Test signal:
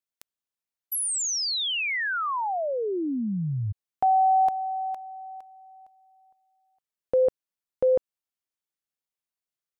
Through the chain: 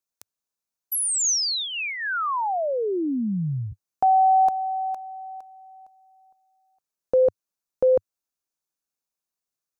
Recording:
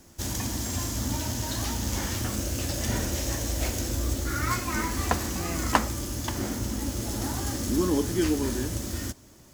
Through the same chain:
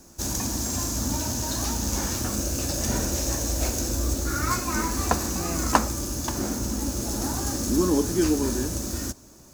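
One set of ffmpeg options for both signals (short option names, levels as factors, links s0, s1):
-af "equalizer=f=100:t=o:w=0.33:g=-10,equalizer=f=2000:t=o:w=0.33:g=-8,equalizer=f=3150:t=o:w=0.33:g=-8,equalizer=f=6300:t=o:w=0.33:g=4,volume=1.41"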